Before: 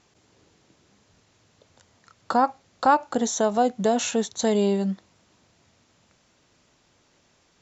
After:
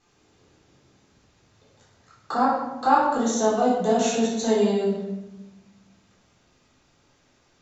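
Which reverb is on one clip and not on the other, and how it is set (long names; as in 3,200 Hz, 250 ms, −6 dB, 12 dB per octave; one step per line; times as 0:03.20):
rectangular room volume 480 cubic metres, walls mixed, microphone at 3.8 metres
level −9 dB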